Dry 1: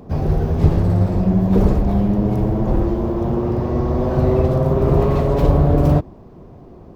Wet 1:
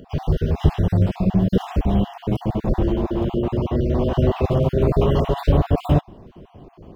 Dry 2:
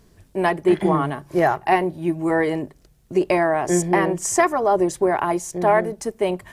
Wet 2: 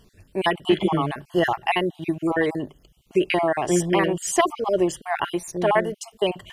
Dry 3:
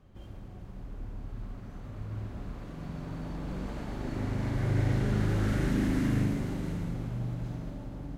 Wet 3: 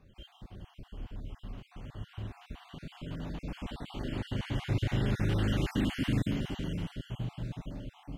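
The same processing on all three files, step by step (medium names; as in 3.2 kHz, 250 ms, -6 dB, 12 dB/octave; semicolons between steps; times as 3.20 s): random holes in the spectrogram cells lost 36%; peaking EQ 3 kHz +14.5 dB 0.42 oct; trim -1 dB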